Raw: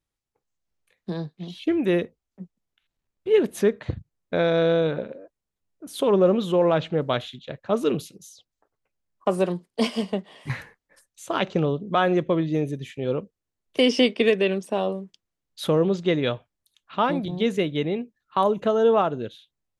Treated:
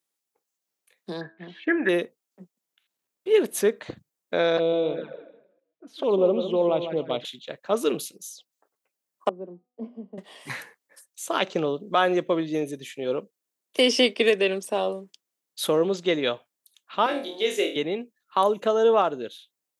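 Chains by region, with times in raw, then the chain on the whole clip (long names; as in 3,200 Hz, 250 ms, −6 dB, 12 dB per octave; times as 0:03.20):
0:01.21–0:01.89: low-pass with resonance 1,700 Hz, resonance Q 12 + hum removal 108.6 Hz, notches 15
0:04.57–0:07.25: repeating echo 154 ms, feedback 28%, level −9 dB + flanger swept by the level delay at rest 6.6 ms, full sweep at −19 dBFS + high-frequency loss of the air 240 metres
0:09.29–0:10.18: four-pole ladder band-pass 260 Hz, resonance 45% + hum removal 247.5 Hz, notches 31
0:17.06–0:17.76: high-pass filter 310 Hz 24 dB per octave + parametric band 1,000 Hz −6 dB 0.97 octaves + flutter between parallel walls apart 4.2 metres, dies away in 0.34 s
whole clip: high-pass filter 290 Hz 12 dB per octave; high-shelf EQ 6,100 Hz +11.5 dB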